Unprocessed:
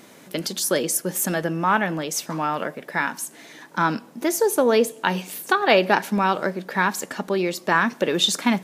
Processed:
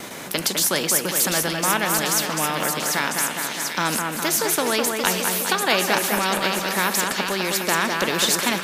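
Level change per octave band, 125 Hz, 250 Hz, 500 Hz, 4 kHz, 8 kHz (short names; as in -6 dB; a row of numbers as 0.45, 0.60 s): -1.0, -2.5, -3.0, +4.5, +7.0 dB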